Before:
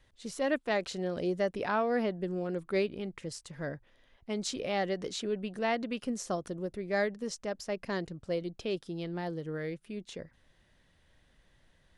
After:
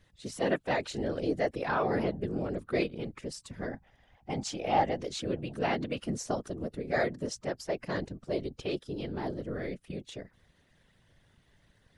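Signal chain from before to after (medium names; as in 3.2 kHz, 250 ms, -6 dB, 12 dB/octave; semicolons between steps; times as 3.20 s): coarse spectral quantiser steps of 15 dB; whisper effect; 3.72–4.96 s: graphic EQ with 31 bands 400 Hz -5 dB, 800 Hz +12 dB, 4 kHz -7 dB, 10 kHz -6 dB; trim +1 dB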